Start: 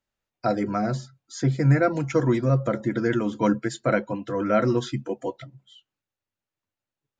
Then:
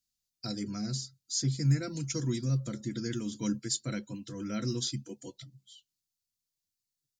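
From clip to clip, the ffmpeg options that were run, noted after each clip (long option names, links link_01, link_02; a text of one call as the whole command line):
ffmpeg -i in.wav -af "firequalizer=gain_entry='entry(190,0);entry(630,-18);entry(4500,14)':delay=0.05:min_phase=1,volume=-7dB" out.wav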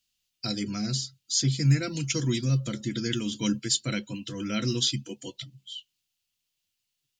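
ffmpeg -i in.wav -af "equalizer=frequency=2900:width_type=o:width=0.72:gain=13.5,volume=4.5dB" out.wav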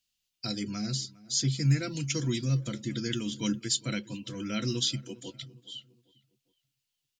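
ffmpeg -i in.wav -filter_complex "[0:a]asplit=2[link_01][link_02];[link_02]adelay=406,lowpass=frequency=2100:poles=1,volume=-20.5dB,asplit=2[link_03][link_04];[link_04]adelay=406,lowpass=frequency=2100:poles=1,volume=0.44,asplit=2[link_05][link_06];[link_06]adelay=406,lowpass=frequency=2100:poles=1,volume=0.44[link_07];[link_01][link_03][link_05][link_07]amix=inputs=4:normalize=0,volume=-3dB" out.wav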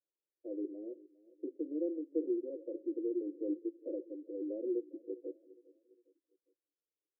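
ffmpeg -i in.wav -af "asuperpass=centerf=420:order=12:qfactor=1.5,volume=3dB" out.wav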